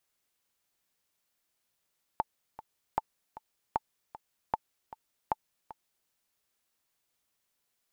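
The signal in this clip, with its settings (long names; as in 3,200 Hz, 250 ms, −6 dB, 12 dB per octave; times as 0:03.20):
click track 154 BPM, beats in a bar 2, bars 5, 877 Hz, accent 16.5 dB −14 dBFS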